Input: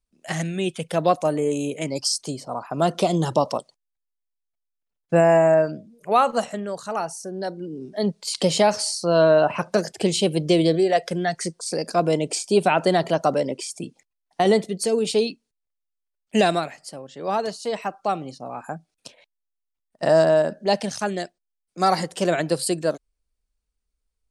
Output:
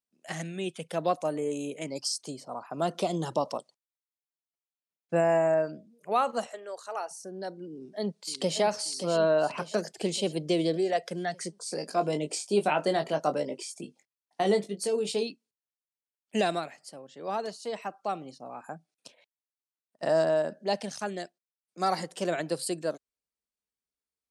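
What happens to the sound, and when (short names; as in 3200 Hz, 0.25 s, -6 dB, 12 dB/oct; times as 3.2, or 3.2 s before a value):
6.47–7.11 HPF 390 Hz 24 dB/oct
7.69–8.59 echo throw 0.58 s, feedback 55%, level -8 dB
11.55–15.23 doubler 20 ms -7 dB
whole clip: HPF 160 Hz; gain -8 dB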